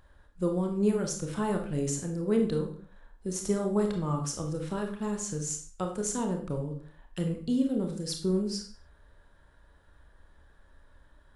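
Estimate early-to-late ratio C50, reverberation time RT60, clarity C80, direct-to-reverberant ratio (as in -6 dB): 7.5 dB, not exponential, 11.5 dB, 3.0 dB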